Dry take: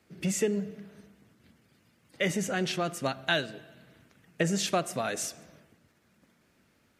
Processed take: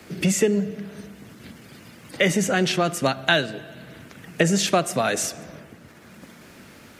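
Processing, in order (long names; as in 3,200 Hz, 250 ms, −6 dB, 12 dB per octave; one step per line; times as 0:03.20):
multiband upward and downward compressor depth 40%
level +9 dB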